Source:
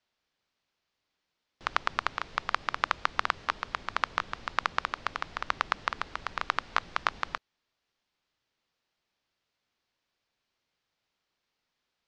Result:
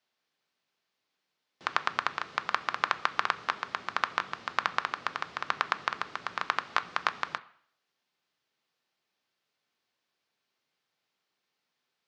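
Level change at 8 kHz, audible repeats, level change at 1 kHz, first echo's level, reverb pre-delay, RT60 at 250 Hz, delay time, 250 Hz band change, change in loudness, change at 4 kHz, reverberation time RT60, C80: 0.0 dB, no echo audible, +0.5 dB, no echo audible, 3 ms, 0.55 s, no echo audible, −1.0 dB, +0.5 dB, 0.0 dB, 0.55 s, 21.0 dB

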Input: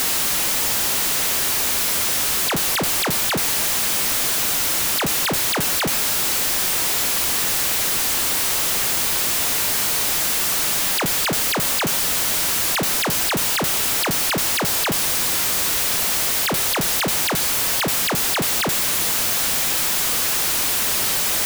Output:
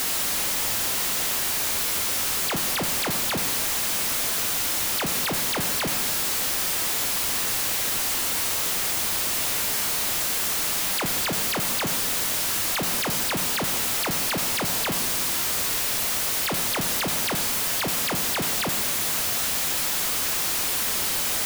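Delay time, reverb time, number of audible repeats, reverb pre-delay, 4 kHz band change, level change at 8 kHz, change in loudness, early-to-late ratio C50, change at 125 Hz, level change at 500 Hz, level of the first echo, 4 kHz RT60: no echo audible, 1.5 s, no echo audible, 9 ms, −4.5 dB, −5.0 dB, −5.0 dB, 8.0 dB, −4.5 dB, −4.5 dB, no echo audible, 1.2 s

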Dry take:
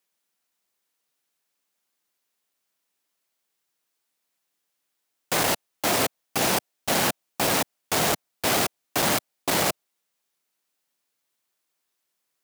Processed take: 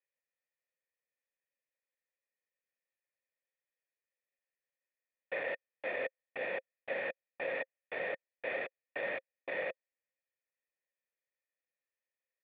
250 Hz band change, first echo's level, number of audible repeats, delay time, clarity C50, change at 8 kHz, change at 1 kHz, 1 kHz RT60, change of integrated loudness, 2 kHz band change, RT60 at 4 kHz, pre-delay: −23.5 dB, no echo audible, no echo audible, no echo audible, no reverb audible, below −40 dB, −20.0 dB, no reverb audible, −15.0 dB, −9.0 dB, no reverb audible, no reverb audible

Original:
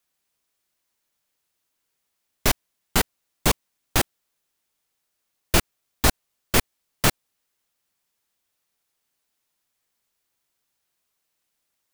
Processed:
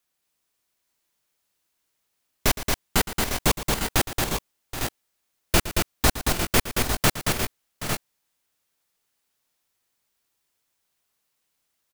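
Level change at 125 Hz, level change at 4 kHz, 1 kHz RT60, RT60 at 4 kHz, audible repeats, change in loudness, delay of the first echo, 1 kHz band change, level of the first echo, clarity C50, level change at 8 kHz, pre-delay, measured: +1.5 dB, +1.5 dB, no reverb audible, no reverb audible, 5, −0.5 dB, 115 ms, +1.5 dB, −14.0 dB, no reverb audible, +1.5 dB, no reverb audible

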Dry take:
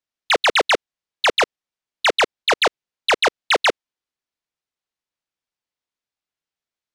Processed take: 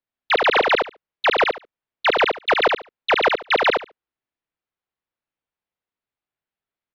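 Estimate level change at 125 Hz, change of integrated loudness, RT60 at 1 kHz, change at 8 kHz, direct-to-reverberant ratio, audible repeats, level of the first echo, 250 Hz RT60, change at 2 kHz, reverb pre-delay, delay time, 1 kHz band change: can't be measured, −0.5 dB, no reverb audible, below −15 dB, no reverb audible, 2, −4.0 dB, no reverb audible, 0.0 dB, no reverb audible, 71 ms, +1.5 dB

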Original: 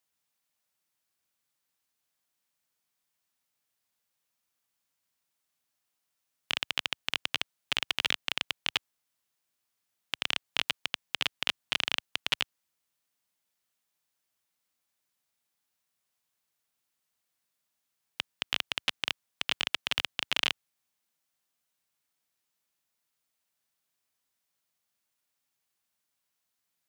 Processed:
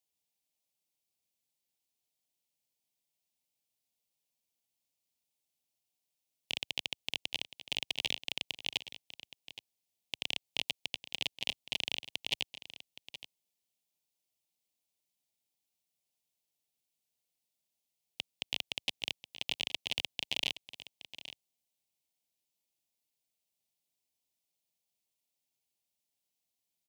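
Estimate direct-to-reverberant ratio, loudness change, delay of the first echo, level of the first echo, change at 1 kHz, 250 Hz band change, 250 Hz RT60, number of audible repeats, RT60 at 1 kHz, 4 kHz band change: no reverb audible, −5.0 dB, 820 ms, −14.0 dB, −11.0 dB, −4.0 dB, no reverb audible, 1, no reverb audible, −4.5 dB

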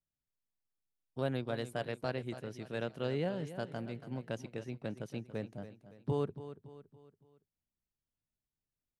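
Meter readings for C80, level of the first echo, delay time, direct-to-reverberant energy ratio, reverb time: no reverb audible, −13.0 dB, 282 ms, no reverb audible, no reverb audible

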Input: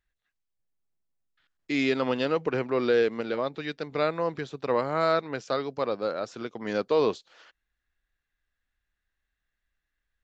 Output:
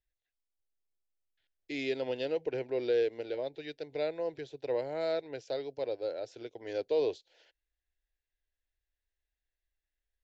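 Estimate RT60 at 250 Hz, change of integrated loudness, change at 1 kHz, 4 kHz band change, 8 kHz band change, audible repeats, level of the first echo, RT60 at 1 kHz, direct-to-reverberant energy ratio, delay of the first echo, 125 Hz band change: no reverb audible, −7.0 dB, −15.0 dB, −8.0 dB, can't be measured, no echo audible, no echo audible, no reverb audible, no reverb audible, no echo audible, −12.5 dB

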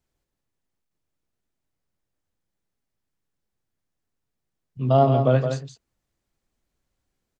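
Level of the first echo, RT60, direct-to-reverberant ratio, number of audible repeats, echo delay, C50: −7.0 dB, no reverb audible, no reverb audible, 1, 168 ms, no reverb audible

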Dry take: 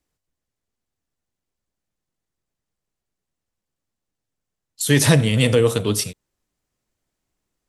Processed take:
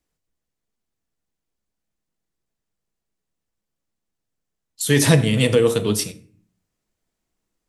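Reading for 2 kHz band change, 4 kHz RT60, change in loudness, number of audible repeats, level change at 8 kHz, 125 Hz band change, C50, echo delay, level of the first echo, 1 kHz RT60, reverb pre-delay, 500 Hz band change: −0.5 dB, 0.35 s, 0.0 dB, no echo audible, −1.0 dB, −1.0 dB, 17.0 dB, no echo audible, no echo audible, 0.45 s, 4 ms, +1.0 dB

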